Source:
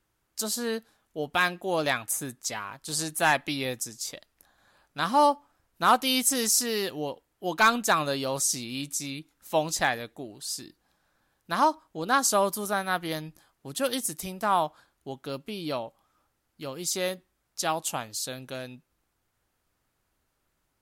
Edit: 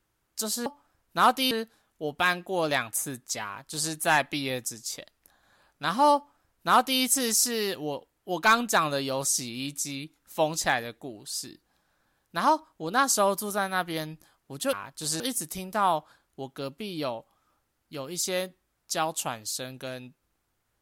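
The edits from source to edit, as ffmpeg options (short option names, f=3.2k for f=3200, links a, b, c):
-filter_complex "[0:a]asplit=5[a][b][c][d][e];[a]atrim=end=0.662[f];[b]atrim=start=5.308:end=6.162[g];[c]atrim=start=0.658:end=13.882[h];[d]atrim=start=2.598:end=3.072[i];[e]atrim=start=13.878[j];[f][g]acrossfade=d=0.004:c1=hsin:c2=hsin[k];[k][h]acrossfade=d=0.004:c1=hsin:c2=hsin[l];[l][i]acrossfade=d=0.004:c1=hsin:c2=hsin[m];[m][j]acrossfade=d=0.004:c1=hsin:c2=hsin"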